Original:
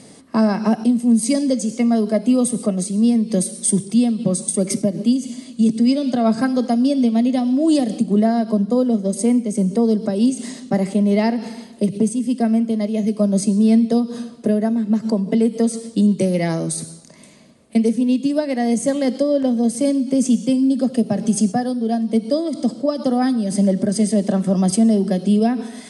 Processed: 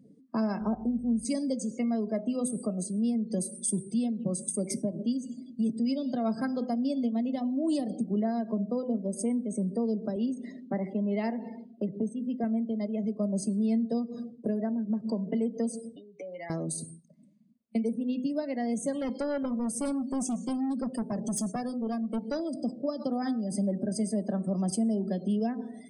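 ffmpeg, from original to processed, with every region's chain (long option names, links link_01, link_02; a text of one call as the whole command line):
ffmpeg -i in.wav -filter_complex "[0:a]asettb=1/sr,asplit=3[link_01][link_02][link_03];[link_01]atrim=end=0.614[link_04];[link_02]atrim=start=0.61:end=1.25,asetpts=PTS-STARTPTS,afade=type=in:duration=0.004:curve=qsin,afade=type=out:start_time=0.636:duration=0.004:curve=qsin,highshelf=frequency=3800:gain=-9,aeval=exprs='val(0)+0.0112*(sin(2*PI*50*n/s)+sin(2*PI*2*50*n/s)/2+sin(2*PI*3*50*n/s)/3+sin(2*PI*4*50*n/s)/4+sin(2*PI*5*50*n/s)/5)':channel_layout=same,asuperstop=centerf=2600:order=20:qfactor=0.93[link_05];[link_03]atrim=start=1.246[link_06];[link_04][link_05]acrossfade=duration=0.004:curve1=hsin:curve2=qsin[link_07];[link_07][link_06]acrossfade=duration=0.004:curve1=qsin:curve2=hsin,asettb=1/sr,asplit=3[link_08][link_09][link_10];[link_08]atrim=end=10.164[link_11];[link_09]atrim=start=10.16:end=12.44,asetpts=PTS-STARTPTS,afade=type=in:duration=0.004:curve=qsin,afade=type=out:start_time=2.276:duration=0.004:curve=qsin,highpass=150,lowpass=3100,aemphasis=mode=production:type=50fm[link_12];[link_10]atrim=start=12.436[link_13];[link_11][link_12]acrossfade=duration=0.004:curve1=hsin:curve2=qsin[link_14];[link_14][link_13]acrossfade=duration=0.004:curve1=qsin:curve2=hsin,asettb=1/sr,asplit=3[link_15][link_16][link_17];[link_15]atrim=end=15.964[link_18];[link_16]atrim=start=15.96:end=16.5,asetpts=PTS-STARTPTS,afade=type=in:duration=0.004:curve=qsin,afade=type=out:start_time=0.536:duration=0.004:curve=qsin,acompressor=threshold=-23dB:ratio=6:attack=3.2:release=140:knee=1:detection=peak,highpass=560,lowpass=4200,aecho=1:1:7:0.59,atrim=end_sample=23814[link_19];[link_17]atrim=start=16.496[link_20];[link_18][link_19]acrossfade=duration=0.004:curve1=hsin:curve2=qsin[link_21];[link_21][link_20]acrossfade=duration=0.004:curve1=qsin:curve2=hsin,asettb=1/sr,asplit=3[link_22][link_23][link_24];[link_22]atrim=end=18.934[link_25];[link_23]atrim=start=18.93:end=22.57,asetpts=PTS-STARTPTS,afade=type=in:duration=0.004:curve=qsin,afade=type=out:start_time=3.636:duration=0.004:curve=qsin,highshelf=frequency=7700:gain=7.5,asoftclip=type=hard:threshold=-16.5dB[link_26];[link_24]atrim=start=22.566[link_27];[link_25][link_26]acrossfade=duration=0.004:curve1=hsin:curve2=qsin[link_28];[link_28][link_27]acrossfade=duration=0.004:curve1=qsin:curve2=hsin,bandreject=frequency=126.4:width_type=h:width=4,bandreject=frequency=252.8:width_type=h:width=4,bandreject=frequency=379.2:width_type=h:width=4,bandreject=frequency=505.6:width_type=h:width=4,bandreject=frequency=632:width_type=h:width=4,bandreject=frequency=758.4:width_type=h:width=4,bandreject=frequency=884.8:width_type=h:width=4,bandreject=frequency=1011.2:width_type=h:width=4,bandreject=frequency=1137.6:width_type=h:width=4,bandreject=frequency=1264:width_type=h:width=4,bandreject=frequency=1390.4:width_type=h:width=4,bandreject=frequency=1516.8:width_type=h:width=4,bandreject=frequency=1643.2:width_type=h:width=4,bandreject=frequency=1769.6:width_type=h:width=4,bandreject=frequency=1896:width_type=h:width=4,bandreject=frequency=2022.4:width_type=h:width=4,bandreject=frequency=2148.8:width_type=h:width=4,bandreject=frequency=2275.2:width_type=h:width=4,bandreject=frequency=2401.6:width_type=h:width=4,bandreject=frequency=2528:width_type=h:width=4,bandreject=frequency=2654.4:width_type=h:width=4,bandreject=frequency=2780.8:width_type=h:width=4,bandreject=frequency=2907.2:width_type=h:width=4,bandreject=frequency=3033.6:width_type=h:width=4,bandreject=frequency=3160:width_type=h:width=4,bandreject=frequency=3286.4:width_type=h:width=4,bandreject=frequency=3412.8:width_type=h:width=4,bandreject=frequency=3539.2:width_type=h:width=4,bandreject=frequency=3665.6:width_type=h:width=4,bandreject=frequency=3792:width_type=h:width=4,bandreject=frequency=3918.4:width_type=h:width=4,bandreject=frequency=4044.8:width_type=h:width=4,bandreject=frequency=4171.2:width_type=h:width=4,bandreject=frequency=4297.6:width_type=h:width=4,bandreject=frequency=4424:width_type=h:width=4,bandreject=frequency=4550.4:width_type=h:width=4,bandreject=frequency=4676.8:width_type=h:width=4,bandreject=frequency=4803.2:width_type=h:width=4,afftdn=noise_reduction=31:noise_floor=-36,acompressor=threshold=-25dB:ratio=1.5,volume=-8dB" out.wav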